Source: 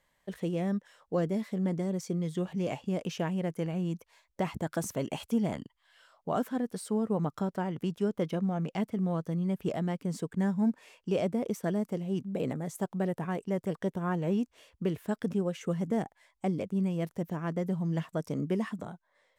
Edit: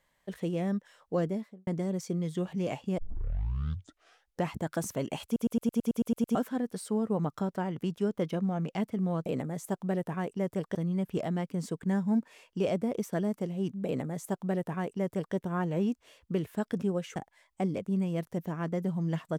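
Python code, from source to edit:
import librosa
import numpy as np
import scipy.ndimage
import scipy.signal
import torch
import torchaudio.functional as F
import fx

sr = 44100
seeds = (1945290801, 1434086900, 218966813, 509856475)

y = fx.studio_fade_out(x, sr, start_s=1.21, length_s=0.46)
y = fx.edit(y, sr, fx.tape_start(start_s=2.98, length_s=1.53),
    fx.stutter_over(start_s=5.25, slice_s=0.11, count=10),
    fx.duplicate(start_s=12.37, length_s=1.49, to_s=9.26),
    fx.cut(start_s=15.67, length_s=0.33), tone=tone)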